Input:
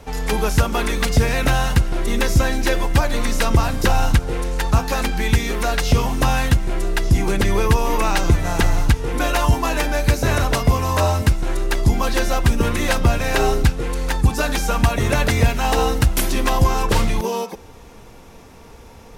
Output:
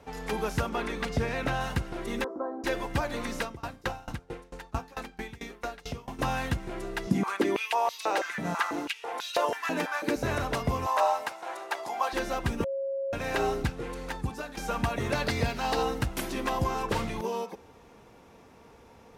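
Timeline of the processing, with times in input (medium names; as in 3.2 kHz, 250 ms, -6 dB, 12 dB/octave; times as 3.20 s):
0.69–1.61 s: treble shelf 7.4 kHz -9 dB
2.24–2.64 s: elliptic band-pass 280–1200 Hz
3.41–6.19 s: sawtooth tremolo in dB decaying 4.5 Hz, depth 25 dB
7.07–10.16 s: step-sequenced high-pass 6.1 Hz 200–4100 Hz
10.86–12.13 s: resonant high-pass 760 Hz, resonance Q 2.5
12.64–13.13 s: bleep 545 Hz -20 dBFS
13.80–14.57 s: fade out equal-power, to -13 dB
15.12–15.83 s: peaking EQ 4.5 kHz +10 dB 0.41 oct
whole clip: high-pass 160 Hz 6 dB/octave; treble shelf 3.8 kHz -8.5 dB; trim -8 dB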